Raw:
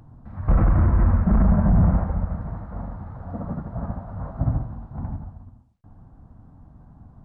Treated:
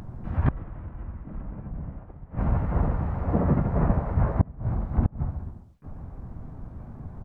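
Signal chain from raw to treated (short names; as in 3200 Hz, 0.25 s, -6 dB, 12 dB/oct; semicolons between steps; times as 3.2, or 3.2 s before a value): harmoniser -7 st -3 dB, -3 st -2 dB, +7 st -7 dB; flipped gate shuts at -13 dBFS, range -27 dB; gain +4.5 dB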